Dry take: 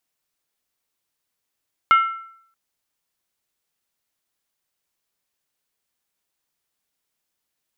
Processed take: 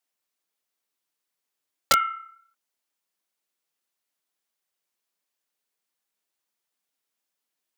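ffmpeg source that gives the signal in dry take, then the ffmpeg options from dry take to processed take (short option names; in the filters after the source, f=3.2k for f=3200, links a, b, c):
-f lavfi -i "aevalsrc='0.376*pow(10,-3*t/0.66)*sin(2*PI*1340*t)+0.133*pow(10,-3*t/0.523)*sin(2*PI*2136*t)+0.0473*pow(10,-3*t/0.452)*sin(2*PI*2862.2*t)+0.0168*pow(10,-3*t/0.436)*sin(2*PI*3076.6*t)+0.00596*pow(10,-3*t/0.405)*sin(2*PI*3555*t)':d=0.63:s=44100"
-af "highpass=200,flanger=delay=0.9:depth=8.2:regen=-41:speed=1.5:shape=triangular,aeval=exprs='(mod(3.35*val(0)+1,2)-1)/3.35':c=same"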